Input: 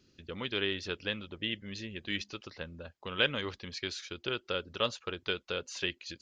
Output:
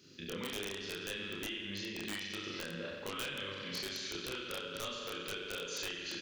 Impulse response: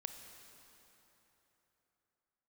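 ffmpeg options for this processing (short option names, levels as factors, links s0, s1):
-filter_complex "[0:a]highpass=140,equalizer=f=760:t=o:w=0.67:g=-8.5,asplit=2[s0][s1];[s1]adelay=41,volume=0.708[s2];[s0][s2]amix=inputs=2:normalize=0,aecho=1:1:92|184|276|368|460|552|644:0.398|0.223|0.125|0.0699|0.0392|0.0219|0.0123,acompressor=threshold=0.00562:ratio=8,highshelf=f=4500:g=5,bandreject=f=227:t=h:w=4,bandreject=f=454:t=h:w=4,bandreject=f=681:t=h:w=4,bandreject=f=908:t=h:w=4,aeval=exprs='(mod(59.6*val(0)+1,2)-1)/59.6':c=same,asplit=2[s3][s4];[1:a]atrim=start_sample=2205,lowpass=4700,adelay=29[s5];[s4][s5]afir=irnorm=-1:irlink=0,volume=1.5[s6];[s3][s6]amix=inputs=2:normalize=0,volume=1.58"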